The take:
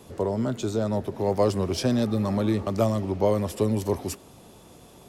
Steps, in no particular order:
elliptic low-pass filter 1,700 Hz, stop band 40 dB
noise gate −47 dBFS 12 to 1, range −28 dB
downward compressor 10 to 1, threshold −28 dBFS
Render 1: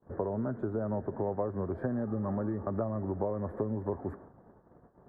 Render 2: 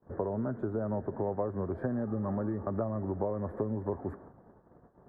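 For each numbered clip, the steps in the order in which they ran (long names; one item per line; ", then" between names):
downward compressor, then noise gate, then elliptic low-pass filter
noise gate, then downward compressor, then elliptic low-pass filter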